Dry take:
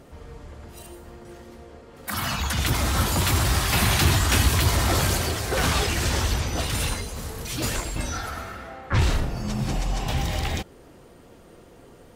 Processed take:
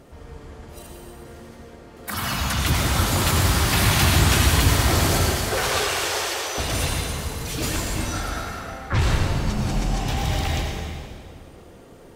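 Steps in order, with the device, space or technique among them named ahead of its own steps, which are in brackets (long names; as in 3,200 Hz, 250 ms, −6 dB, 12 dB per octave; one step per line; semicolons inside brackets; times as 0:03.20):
0:05.32–0:06.58: Butterworth high-pass 360 Hz 48 dB per octave
stairwell (convolution reverb RT60 2.1 s, pre-delay 83 ms, DRR 1 dB)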